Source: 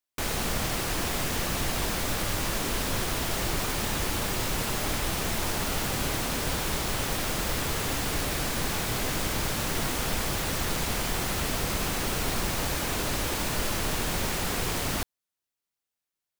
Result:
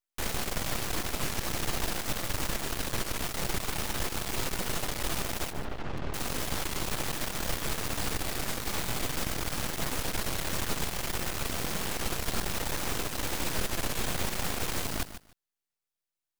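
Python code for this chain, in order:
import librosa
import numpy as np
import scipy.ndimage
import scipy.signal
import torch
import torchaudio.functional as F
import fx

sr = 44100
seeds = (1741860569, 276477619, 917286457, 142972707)

y = fx.highpass(x, sr, hz=41.0, slope=24, at=(11.5, 11.96))
y = np.maximum(y, 0.0)
y = fx.spacing_loss(y, sr, db_at_10k=34, at=(5.51, 6.14))
y = fx.echo_feedback(y, sr, ms=147, feedback_pct=17, wet_db=-12.0)
y = fx.buffer_crackle(y, sr, first_s=0.7, period_s=0.17, block=256, kind='repeat')
y = fx.record_warp(y, sr, rpm=33.33, depth_cents=100.0)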